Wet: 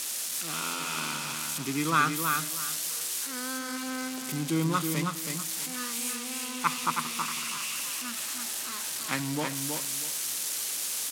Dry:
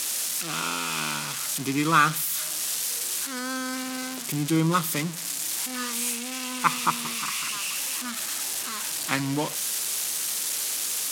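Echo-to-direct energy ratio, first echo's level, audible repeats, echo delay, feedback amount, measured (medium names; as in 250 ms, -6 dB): -4.5 dB, -5.0 dB, 3, 322 ms, 24%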